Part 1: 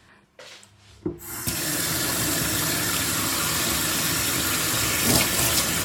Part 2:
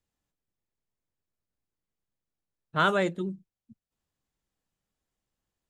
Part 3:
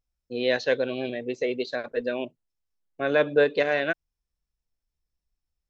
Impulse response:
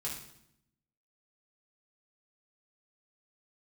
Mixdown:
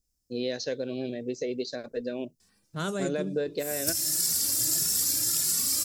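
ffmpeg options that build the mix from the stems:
-filter_complex "[0:a]lowshelf=f=480:g=-7,asplit=2[a][b];[b]adelay=2.3,afreqshift=1.6[c];[a][c]amix=inputs=2:normalize=1,adelay=2400,volume=-5dB[d];[1:a]volume=-1.5dB,asplit=2[e][f];[2:a]acompressor=threshold=-25dB:ratio=3,adynamicequalizer=threshold=0.00794:dfrequency=1900:dqfactor=0.7:tfrequency=1900:tqfactor=0.7:attack=5:release=100:ratio=0.375:range=1.5:mode=cutabove:tftype=highshelf,volume=1.5dB[g];[f]apad=whole_len=363860[h];[d][h]sidechaincompress=threshold=-46dB:ratio=8:attack=16:release=290[i];[i][e][g]amix=inputs=3:normalize=0,firequalizer=gain_entry='entry(210,0);entry(940,-12);entry(3300,-7);entry(5000,9)':delay=0.05:min_phase=1"

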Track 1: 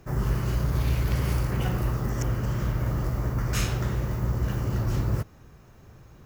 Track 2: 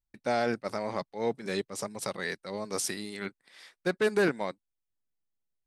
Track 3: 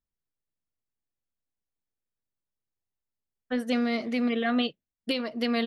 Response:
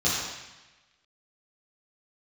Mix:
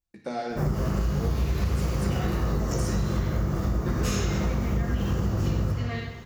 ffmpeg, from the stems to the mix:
-filter_complex "[0:a]adelay=500,volume=2.5dB,asplit=2[a][b];[b]volume=-11dB[c];[1:a]acompressor=threshold=-32dB:ratio=6,volume=-1dB,asplit=2[d][e];[e]volume=-11.5dB[f];[2:a]equalizer=f=1.8k:t=o:w=0.85:g=12.5,adelay=350,volume=-14.5dB,asplit=2[g][h];[h]volume=-11.5dB[i];[3:a]atrim=start_sample=2205[j];[c][f][i]amix=inputs=3:normalize=0[k];[k][j]afir=irnorm=-1:irlink=0[l];[a][d][g][l]amix=inputs=4:normalize=0,acompressor=threshold=-22dB:ratio=6"

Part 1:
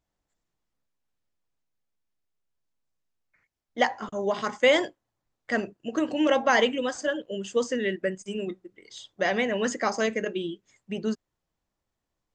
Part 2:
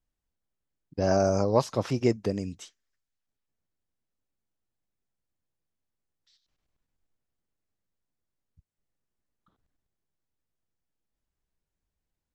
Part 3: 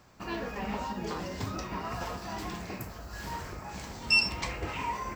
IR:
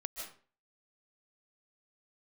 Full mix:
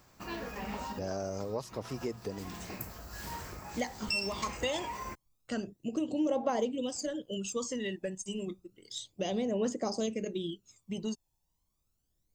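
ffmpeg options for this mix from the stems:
-filter_complex "[0:a]equalizer=f=1.7k:t=o:w=0.94:g=-14,aphaser=in_gain=1:out_gain=1:delay=1.2:decay=0.66:speed=0.31:type=triangular,volume=-2dB[a];[1:a]equalizer=f=440:w=7.2:g=6,bandreject=f=60:t=h:w=6,bandreject=f=120:t=h:w=6,volume=-10dB,asplit=2[b][c];[2:a]volume=-4dB[d];[c]apad=whole_len=227283[e];[d][e]sidechaincompress=threshold=-40dB:ratio=8:attack=20:release=427[f];[a][b][f]amix=inputs=3:normalize=0,highshelf=f=7.3k:g=11,acompressor=threshold=-33dB:ratio=2.5"

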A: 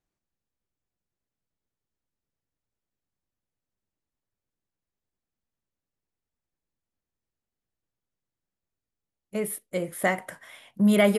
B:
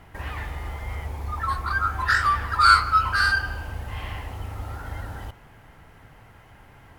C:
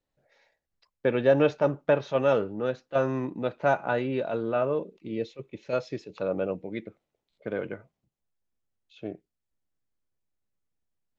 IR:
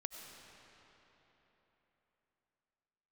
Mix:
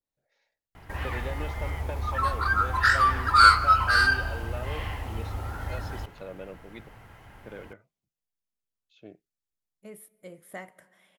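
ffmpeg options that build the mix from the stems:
-filter_complex "[0:a]adelay=500,volume=-17dB,asplit=2[a][b];[b]volume=-15.5dB[c];[1:a]adelay=750,volume=0dB[d];[2:a]highshelf=f=3k:g=7,acompressor=threshold=-23dB:ratio=6,adynamicequalizer=threshold=0.00562:dfrequency=1800:dqfactor=0.7:tfrequency=1800:tqfactor=0.7:attack=5:release=100:ratio=0.375:range=2:mode=boostabove:tftype=highshelf,volume=-11.5dB[e];[3:a]atrim=start_sample=2205[f];[c][f]afir=irnorm=-1:irlink=0[g];[a][d][e][g]amix=inputs=4:normalize=0"

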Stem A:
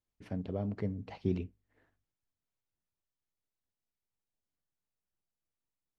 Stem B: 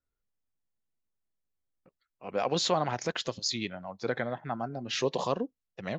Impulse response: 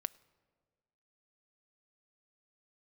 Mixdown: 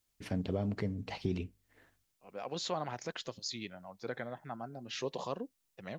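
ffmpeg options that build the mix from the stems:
-filter_complex "[0:a]highshelf=f=2.3k:g=11,acontrast=77,volume=-2.5dB,asplit=2[a][b];[1:a]volume=-8.5dB[c];[b]apad=whole_len=264025[d];[c][d]sidechaincompress=threshold=-44dB:ratio=8:attack=12:release=850[e];[a][e]amix=inputs=2:normalize=0,alimiter=limit=-22.5dB:level=0:latency=1:release=368"

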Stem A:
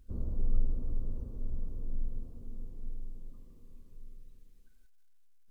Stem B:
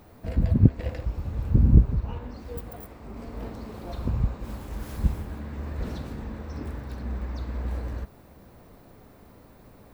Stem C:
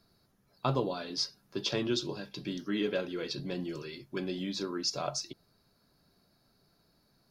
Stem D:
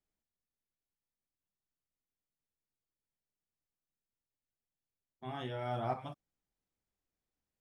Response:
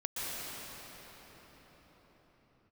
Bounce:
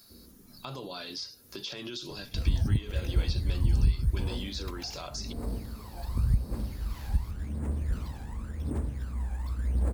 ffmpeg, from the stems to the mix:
-filter_complex "[0:a]highpass=110,asplit=2[a][b];[b]afreqshift=-0.7[c];[a][c]amix=inputs=2:normalize=1,volume=-7.5dB[d];[1:a]aphaser=in_gain=1:out_gain=1:delay=1.3:decay=0.73:speed=0.9:type=triangular,acrusher=samples=5:mix=1:aa=0.000001,adelay=2100,volume=-7.5dB[e];[2:a]alimiter=level_in=3.5dB:limit=-24dB:level=0:latency=1:release=51,volume=-3.5dB,acrossover=split=3800[f][g];[g]acompressor=threshold=-51dB:ratio=4:attack=1:release=60[h];[f][h]amix=inputs=2:normalize=0,volume=1.5dB[i];[d][i]amix=inputs=2:normalize=0,crystalizer=i=6.5:c=0,acompressor=threshold=-42dB:ratio=2,volume=0dB[j];[e][j]amix=inputs=2:normalize=0,alimiter=limit=-15dB:level=0:latency=1:release=297"

